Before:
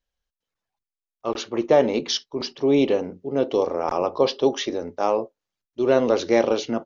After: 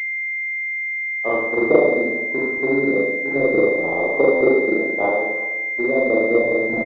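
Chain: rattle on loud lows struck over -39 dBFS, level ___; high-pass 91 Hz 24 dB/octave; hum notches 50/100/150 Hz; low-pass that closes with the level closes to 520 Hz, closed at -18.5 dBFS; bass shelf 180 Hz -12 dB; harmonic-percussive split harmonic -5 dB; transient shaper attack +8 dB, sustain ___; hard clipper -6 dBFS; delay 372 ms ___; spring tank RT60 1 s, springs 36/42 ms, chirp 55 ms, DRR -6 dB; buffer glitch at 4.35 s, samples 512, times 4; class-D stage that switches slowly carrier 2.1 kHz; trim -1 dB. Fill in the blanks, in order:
-26 dBFS, -5 dB, -18 dB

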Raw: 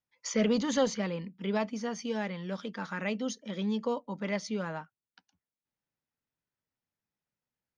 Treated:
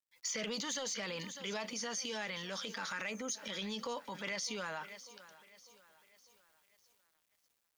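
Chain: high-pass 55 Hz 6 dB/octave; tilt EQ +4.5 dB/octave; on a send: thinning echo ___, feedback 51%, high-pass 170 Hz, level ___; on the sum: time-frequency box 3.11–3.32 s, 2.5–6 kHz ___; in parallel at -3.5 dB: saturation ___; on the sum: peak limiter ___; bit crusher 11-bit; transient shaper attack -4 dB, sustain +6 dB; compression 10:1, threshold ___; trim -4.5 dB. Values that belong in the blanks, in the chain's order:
599 ms, -22.5 dB, -16 dB, -27 dBFS, -17.5 dBFS, -31 dBFS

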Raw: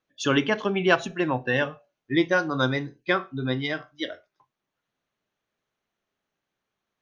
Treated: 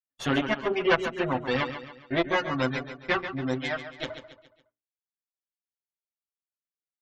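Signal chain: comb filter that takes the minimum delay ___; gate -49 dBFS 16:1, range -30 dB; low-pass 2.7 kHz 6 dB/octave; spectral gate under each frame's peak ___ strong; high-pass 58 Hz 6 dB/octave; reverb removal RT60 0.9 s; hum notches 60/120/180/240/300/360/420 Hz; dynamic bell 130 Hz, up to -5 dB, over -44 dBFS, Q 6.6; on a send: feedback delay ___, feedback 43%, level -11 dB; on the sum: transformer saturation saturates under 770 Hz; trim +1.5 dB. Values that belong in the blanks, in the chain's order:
7.9 ms, -40 dB, 139 ms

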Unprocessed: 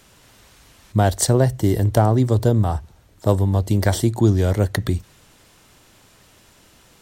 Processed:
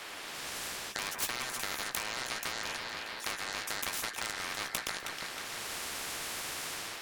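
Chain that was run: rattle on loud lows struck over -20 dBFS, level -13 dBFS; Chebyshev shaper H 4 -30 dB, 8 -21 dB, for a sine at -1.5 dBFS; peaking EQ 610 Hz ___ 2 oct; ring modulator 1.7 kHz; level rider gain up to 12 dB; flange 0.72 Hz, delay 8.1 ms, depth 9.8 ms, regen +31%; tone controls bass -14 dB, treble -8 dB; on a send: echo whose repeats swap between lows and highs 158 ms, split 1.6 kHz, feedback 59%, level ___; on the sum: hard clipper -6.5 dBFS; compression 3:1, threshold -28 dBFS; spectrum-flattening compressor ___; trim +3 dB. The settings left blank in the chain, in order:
+4.5 dB, -12.5 dB, 4:1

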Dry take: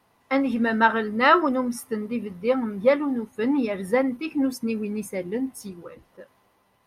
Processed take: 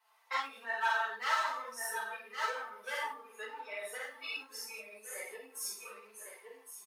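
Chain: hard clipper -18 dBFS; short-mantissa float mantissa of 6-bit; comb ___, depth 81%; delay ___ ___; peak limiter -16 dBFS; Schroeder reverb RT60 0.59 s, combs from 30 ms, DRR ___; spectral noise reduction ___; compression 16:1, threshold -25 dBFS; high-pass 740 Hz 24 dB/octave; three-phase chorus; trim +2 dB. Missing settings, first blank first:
4.5 ms, 1112 ms, -12 dB, -3 dB, 8 dB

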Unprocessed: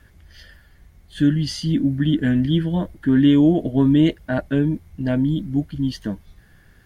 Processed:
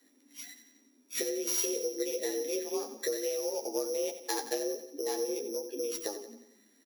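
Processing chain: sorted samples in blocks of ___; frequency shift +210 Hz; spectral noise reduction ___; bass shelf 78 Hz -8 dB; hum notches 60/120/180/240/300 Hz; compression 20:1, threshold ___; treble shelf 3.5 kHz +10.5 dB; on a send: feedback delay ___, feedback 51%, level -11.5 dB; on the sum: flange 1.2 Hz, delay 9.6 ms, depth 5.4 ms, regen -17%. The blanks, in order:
8 samples, 13 dB, -28 dBFS, 90 ms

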